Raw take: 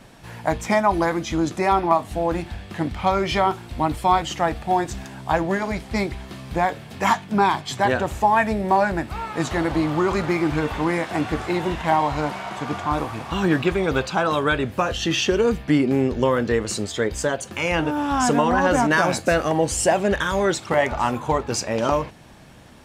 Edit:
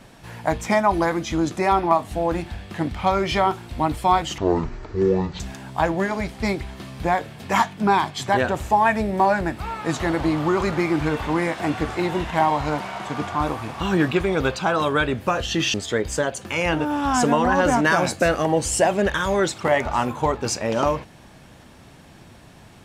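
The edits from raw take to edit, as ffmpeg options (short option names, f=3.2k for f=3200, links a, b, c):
-filter_complex "[0:a]asplit=4[a][b][c][d];[a]atrim=end=4.384[e];[b]atrim=start=4.38:end=4.91,asetpts=PTS-STARTPTS,asetrate=22932,aresample=44100,atrim=end_sample=44948,asetpts=PTS-STARTPTS[f];[c]atrim=start=4.906:end=15.252[g];[d]atrim=start=16.798[h];[e][f]acrossfade=d=0.004:c1=hsin:c2=hsin[i];[i][g]acrossfade=d=0.004:c1=hsin:c2=hsin[j];[j][h]acrossfade=d=0.004:c1=hsin:c2=hsin"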